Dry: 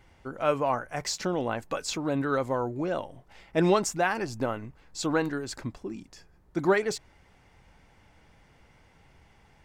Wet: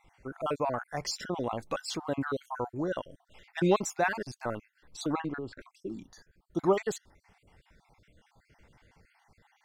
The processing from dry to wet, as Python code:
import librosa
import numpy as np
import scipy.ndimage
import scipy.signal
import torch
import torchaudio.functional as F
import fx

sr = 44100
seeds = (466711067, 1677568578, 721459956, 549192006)

y = fx.spec_dropout(x, sr, seeds[0], share_pct=47)
y = fx.lowpass(y, sr, hz=fx.line((5.12, 3700.0), (5.6, 1800.0)), slope=12, at=(5.12, 5.6), fade=0.02)
y = y * 10.0 ** (-1.5 / 20.0)